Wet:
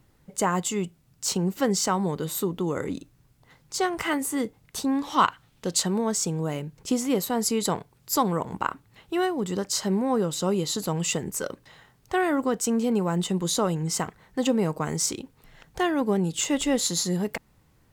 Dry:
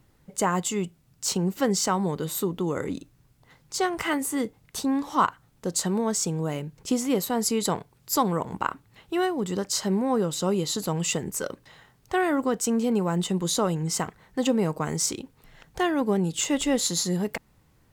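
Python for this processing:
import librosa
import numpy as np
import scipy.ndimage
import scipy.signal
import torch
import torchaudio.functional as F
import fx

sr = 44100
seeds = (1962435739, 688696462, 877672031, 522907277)

y = fx.peak_eq(x, sr, hz=3100.0, db=9.0, octaves=1.4, at=(5.03, 5.83))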